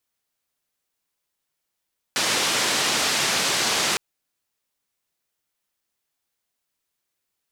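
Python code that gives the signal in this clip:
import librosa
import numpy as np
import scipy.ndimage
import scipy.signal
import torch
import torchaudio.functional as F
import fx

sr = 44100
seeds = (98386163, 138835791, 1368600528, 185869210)

y = fx.band_noise(sr, seeds[0], length_s=1.81, low_hz=160.0, high_hz=6100.0, level_db=-22.5)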